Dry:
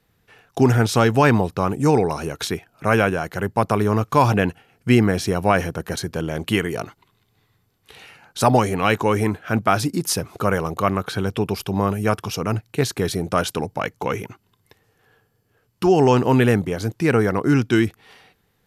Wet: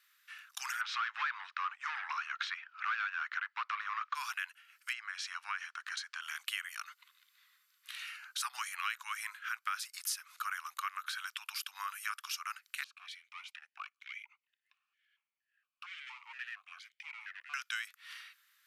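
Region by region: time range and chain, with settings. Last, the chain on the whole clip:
0.81–4.15 overdrive pedal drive 21 dB, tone 1900 Hz, clips at -2.5 dBFS + air absorption 200 m
4.93–6.22 compressor 1.5:1, threshold -21 dBFS + air absorption 100 m
12.84–17.54 hard clip -20 dBFS + vowel sequencer 4.3 Hz
whole clip: steep high-pass 1200 Hz 48 dB/oct; compressor 3:1, threshold -41 dBFS; gain +1.5 dB

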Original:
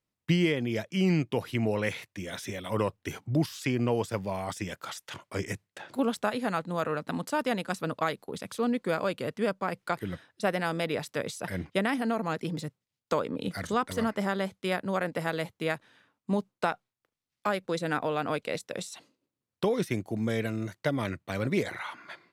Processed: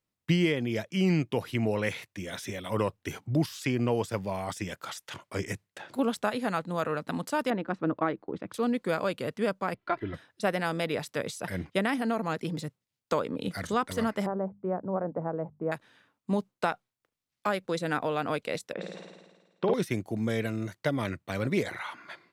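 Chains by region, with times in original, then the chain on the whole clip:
7.5–8.54 LPF 1700 Hz + bell 320 Hz +9.5 dB 0.32 oct
9.74–10.14 air absorption 290 m + comb 3 ms, depth 77%
14.26–15.72 LPF 1000 Hz 24 dB/oct + notches 50/100/150/200/250 Hz
18.73–19.74 BPF 170–2300 Hz + flutter echo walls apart 9.2 m, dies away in 1.3 s
whole clip: dry

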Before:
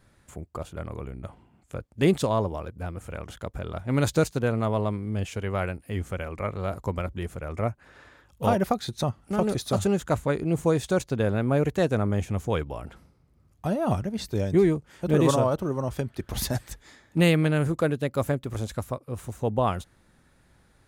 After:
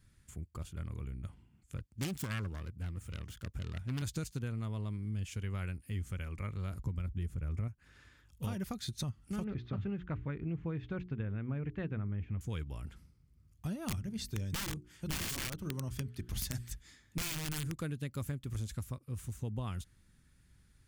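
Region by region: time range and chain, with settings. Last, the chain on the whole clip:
1.77–4.02 self-modulated delay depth 0.69 ms + HPF 54 Hz
6.79–7.68 low shelf 390 Hz +7 dB + mismatched tape noise reduction decoder only
9.44–12.41 LPF 2500 Hz 24 dB/oct + notches 60/120/180/240/300/360/420 Hz
13.84–17.72 notches 60/120/180/240/300/360/420 Hz + wrapped overs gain 17.5 dB
whole clip: passive tone stack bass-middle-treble 6-0-2; notch 3900 Hz, Q 22; compressor, threshold -44 dBFS; gain +10.5 dB

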